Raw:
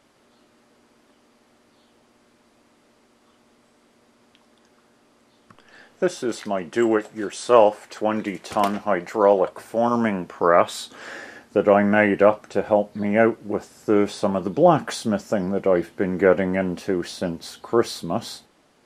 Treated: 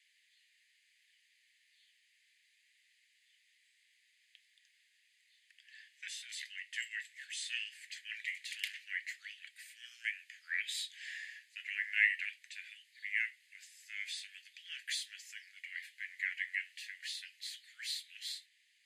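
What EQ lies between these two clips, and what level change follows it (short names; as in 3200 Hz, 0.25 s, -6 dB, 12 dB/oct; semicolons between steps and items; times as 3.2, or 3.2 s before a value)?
steep high-pass 1800 Hz 96 dB/oct; tilt -3 dB/oct; notch 5600 Hz, Q 5.7; +1.0 dB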